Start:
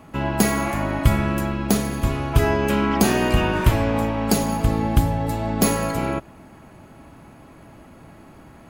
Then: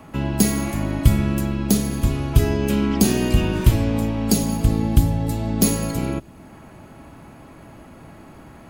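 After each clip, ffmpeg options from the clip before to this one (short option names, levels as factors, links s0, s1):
-filter_complex "[0:a]acrossover=split=410|3000[s0][s1][s2];[s1]acompressor=threshold=0.00501:ratio=2[s3];[s0][s3][s2]amix=inputs=3:normalize=0,volume=1.33"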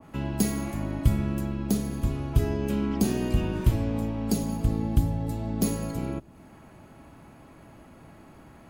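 -af "adynamicequalizer=threshold=0.00708:dfrequency=1600:dqfactor=0.7:tfrequency=1600:tqfactor=0.7:attack=5:release=100:ratio=0.375:range=2.5:mode=cutabove:tftype=highshelf,volume=0.447"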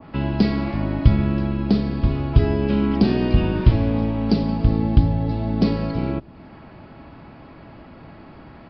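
-af "aresample=11025,aresample=44100,volume=2.37"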